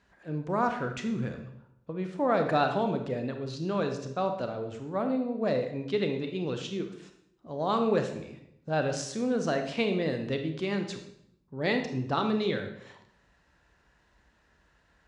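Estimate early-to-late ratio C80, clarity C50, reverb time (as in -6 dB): 10.5 dB, 7.5 dB, 0.75 s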